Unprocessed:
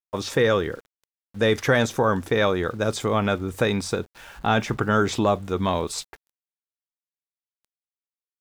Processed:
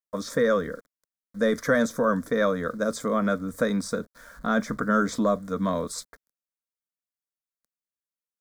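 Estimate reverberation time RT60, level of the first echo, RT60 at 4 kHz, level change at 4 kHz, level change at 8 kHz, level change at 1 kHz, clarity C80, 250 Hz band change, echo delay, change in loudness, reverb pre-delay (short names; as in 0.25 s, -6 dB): none, none, none, -9.0 dB, -3.0 dB, -4.0 dB, none, 0.0 dB, none, -2.5 dB, none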